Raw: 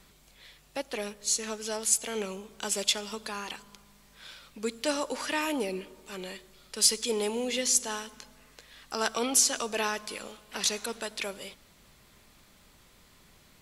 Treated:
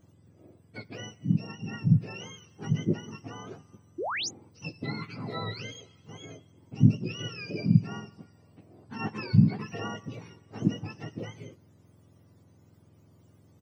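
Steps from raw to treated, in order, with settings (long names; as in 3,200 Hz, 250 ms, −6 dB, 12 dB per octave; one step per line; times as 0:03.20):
frequency axis turned over on the octave scale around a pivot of 1,100 Hz
sound drawn into the spectrogram rise, 0:03.98–0:04.29, 300–7,300 Hz −26 dBFS
double-tracking delay 19 ms −12.5 dB
level −6 dB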